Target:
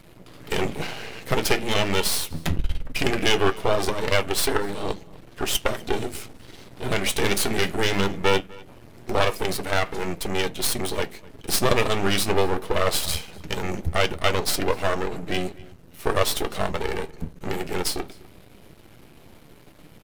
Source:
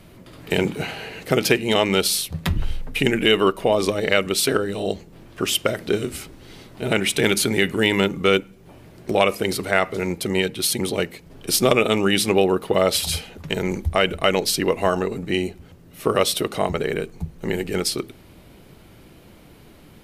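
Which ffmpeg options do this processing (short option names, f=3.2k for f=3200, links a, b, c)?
-filter_complex "[0:a]aeval=exprs='max(val(0),0)':c=same,asplit=2[a][b];[b]adelay=250.7,volume=-22dB,highshelf=f=4k:g=-5.64[c];[a][c]amix=inputs=2:normalize=0,flanger=delay=6:depth=6.2:regen=-63:speed=0.2:shape=triangular,volume=6dB"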